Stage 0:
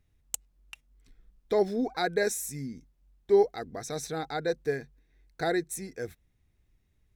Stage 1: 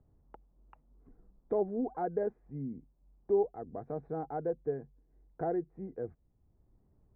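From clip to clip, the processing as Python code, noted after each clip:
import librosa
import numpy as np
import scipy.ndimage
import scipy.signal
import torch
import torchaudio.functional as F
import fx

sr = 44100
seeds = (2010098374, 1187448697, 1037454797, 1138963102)

y = scipy.signal.sosfilt(scipy.signal.butter(4, 1000.0, 'lowpass', fs=sr, output='sos'), x)
y = fx.band_squash(y, sr, depth_pct=40)
y = y * 10.0 ** (-4.0 / 20.0)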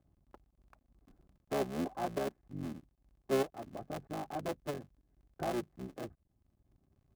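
y = fx.cycle_switch(x, sr, every=3, mode='muted')
y = fx.notch_comb(y, sr, f0_hz=470.0)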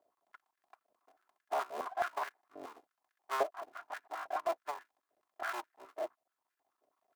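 y = fx.lower_of_two(x, sr, delay_ms=2.9)
y = fx.filter_held_highpass(y, sr, hz=9.4, low_hz=610.0, high_hz=1600.0)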